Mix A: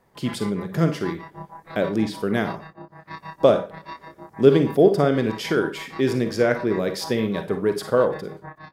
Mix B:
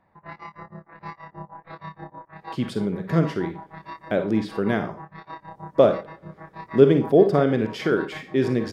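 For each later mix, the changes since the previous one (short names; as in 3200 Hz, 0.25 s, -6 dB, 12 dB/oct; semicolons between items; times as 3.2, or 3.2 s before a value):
speech: entry +2.35 s; master: add LPF 2700 Hz 6 dB/oct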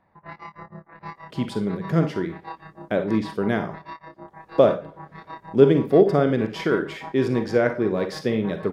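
speech: entry -1.20 s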